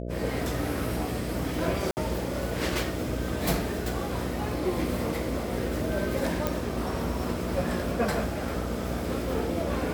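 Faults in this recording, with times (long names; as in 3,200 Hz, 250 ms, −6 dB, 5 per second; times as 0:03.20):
mains buzz 60 Hz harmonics 11 −34 dBFS
0:01.91–0:01.97: drop-out 59 ms
0:06.47: click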